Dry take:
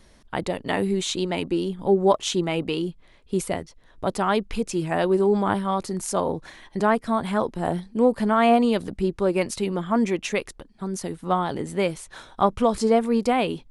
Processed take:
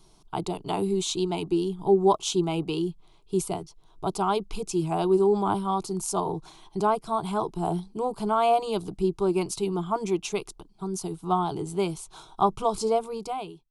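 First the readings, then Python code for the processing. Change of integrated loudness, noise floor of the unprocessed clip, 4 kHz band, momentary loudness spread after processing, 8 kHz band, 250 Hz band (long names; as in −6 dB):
−3.0 dB, −54 dBFS, −3.5 dB, 11 LU, −0.5 dB, −5.0 dB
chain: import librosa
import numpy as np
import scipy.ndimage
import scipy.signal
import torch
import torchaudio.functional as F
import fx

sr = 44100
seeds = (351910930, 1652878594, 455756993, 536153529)

y = fx.fade_out_tail(x, sr, length_s=0.81)
y = fx.fixed_phaser(y, sr, hz=360.0, stages=8)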